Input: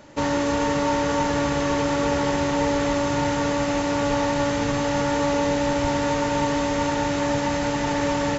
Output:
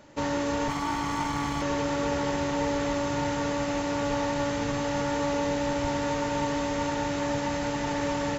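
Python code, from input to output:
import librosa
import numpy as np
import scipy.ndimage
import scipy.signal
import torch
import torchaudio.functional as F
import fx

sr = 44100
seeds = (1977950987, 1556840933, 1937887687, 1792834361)

y = fx.lower_of_two(x, sr, delay_ms=0.94, at=(0.68, 1.62))
y = fx.quant_float(y, sr, bits=6)
y = y * librosa.db_to_amplitude(-5.5)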